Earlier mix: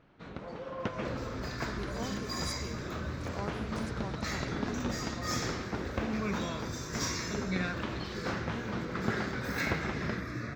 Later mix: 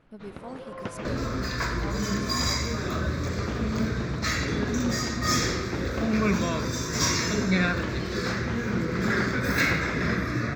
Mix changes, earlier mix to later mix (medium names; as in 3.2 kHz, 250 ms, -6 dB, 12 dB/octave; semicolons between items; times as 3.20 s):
speech: entry -1.55 s; second sound +10.0 dB